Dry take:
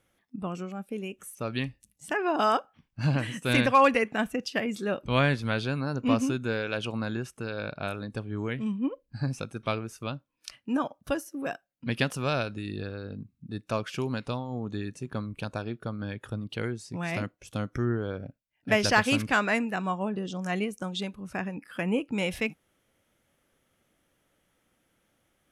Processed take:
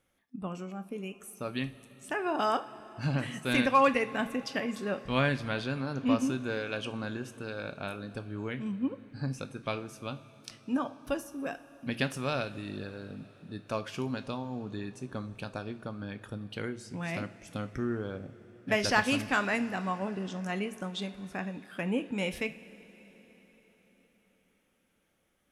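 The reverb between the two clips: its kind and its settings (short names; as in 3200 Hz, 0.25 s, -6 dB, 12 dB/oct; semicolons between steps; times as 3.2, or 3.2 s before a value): two-slope reverb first 0.32 s, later 4.9 s, from -18 dB, DRR 9 dB; gain -4 dB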